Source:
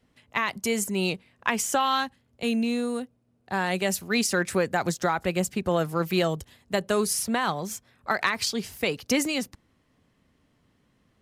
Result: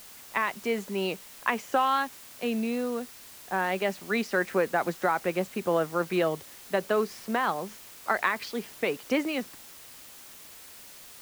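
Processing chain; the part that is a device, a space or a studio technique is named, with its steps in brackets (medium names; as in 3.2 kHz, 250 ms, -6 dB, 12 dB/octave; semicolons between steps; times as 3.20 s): wax cylinder (band-pass 260–2300 Hz; wow and flutter; white noise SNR 18 dB)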